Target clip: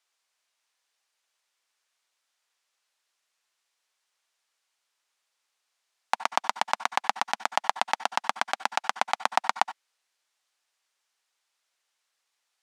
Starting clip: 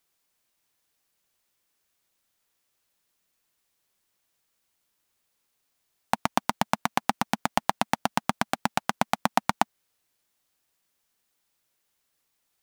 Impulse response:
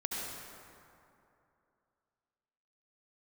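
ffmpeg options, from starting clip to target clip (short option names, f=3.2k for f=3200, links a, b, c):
-filter_complex "[0:a]highpass=690,lowpass=7.5k,asplit=2[a][b];[1:a]atrim=start_sample=2205,atrim=end_sample=4410,lowshelf=f=150:g=-8.5[c];[b][c]afir=irnorm=-1:irlink=0,volume=-7.5dB[d];[a][d]amix=inputs=2:normalize=0,volume=-1.5dB"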